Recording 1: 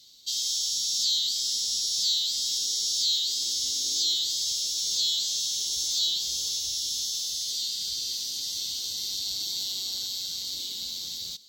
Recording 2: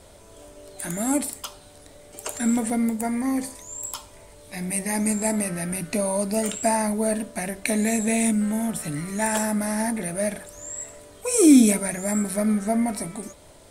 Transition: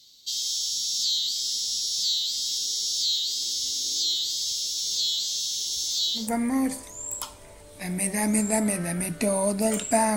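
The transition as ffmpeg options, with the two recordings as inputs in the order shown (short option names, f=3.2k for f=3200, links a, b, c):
-filter_complex "[0:a]apad=whole_dur=10.16,atrim=end=10.16,atrim=end=6.3,asetpts=PTS-STARTPTS[a];[1:a]atrim=start=2.86:end=6.88,asetpts=PTS-STARTPTS[b];[a][b]acrossfade=d=0.16:c1=tri:c2=tri"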